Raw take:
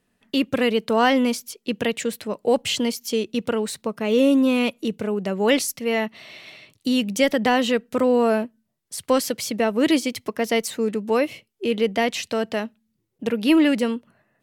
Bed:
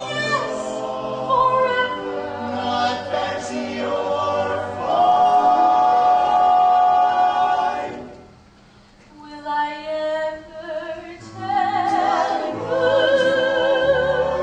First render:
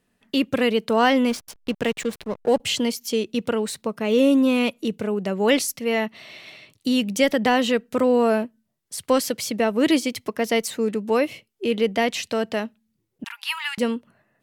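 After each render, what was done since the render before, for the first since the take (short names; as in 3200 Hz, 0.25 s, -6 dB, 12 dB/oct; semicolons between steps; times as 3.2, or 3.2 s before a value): 1.29–2.6 backlash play -28.5 dBFS; 13.24–13.78 steep high-pass 870 Hz 72 dB/oct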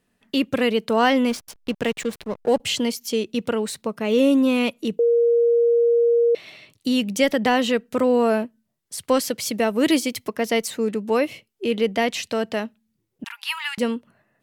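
4.99–6.35 bleep 470 Hz -14 dBFS; 9.45–10.28 high shelf 5800 Hz -> 11000 Hz +7.5 dB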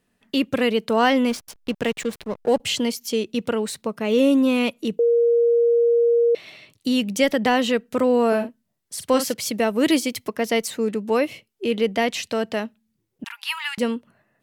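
8.28–9.34 doubler 43 ms -8.5 dB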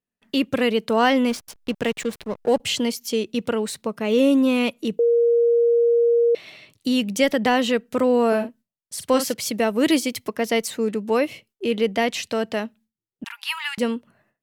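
gate with hold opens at -55 dBFS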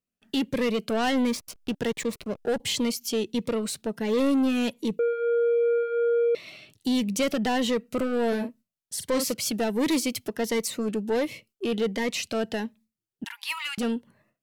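soft clip -19 dBFS, distortion -11 dB; cascading phaser rising 1.4 Hz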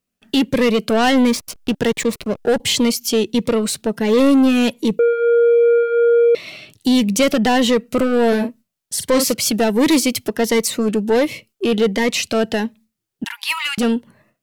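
gain +10 dB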